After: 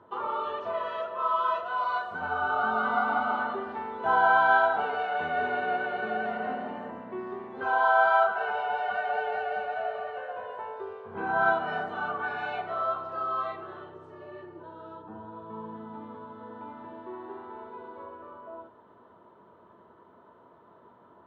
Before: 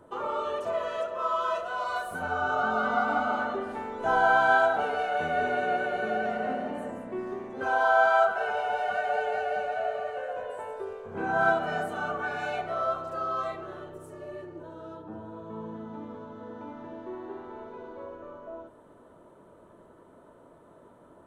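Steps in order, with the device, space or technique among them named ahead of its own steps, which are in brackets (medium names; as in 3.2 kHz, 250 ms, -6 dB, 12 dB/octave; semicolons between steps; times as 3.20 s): guitar cabinet (cabinet simulation 100–4000 Hz, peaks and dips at 150 Hz -7 dB, 290 Hz -7 dB, 560 Hz -7 dB, 1 kHz +5 dB, 2.4 kHz -3 dB)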